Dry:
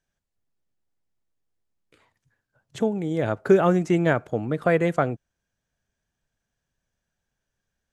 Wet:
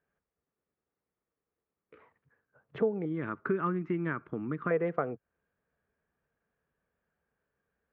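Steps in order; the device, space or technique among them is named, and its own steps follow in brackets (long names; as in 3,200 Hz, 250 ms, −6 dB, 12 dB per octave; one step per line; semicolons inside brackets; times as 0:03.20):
0:03.05–0:04.71: flat-topped bell 590 Hz −16 dB 1.1 octaves
bass amplifier (downward compressor 3 to 1, threshold −33 dBFS, peak gain reduction 13.5 dB; loudspeaker in its box 68–2,300 Hz, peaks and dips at 110 Hz −10 dB, 450 Hz +9 dB, 1,200 Hz +6 dB)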